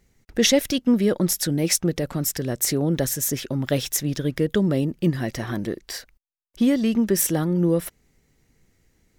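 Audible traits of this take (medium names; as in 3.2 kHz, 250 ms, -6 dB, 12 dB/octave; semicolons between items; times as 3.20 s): noise floor -66 dBFS; spectral tilt -4.5 dB/octave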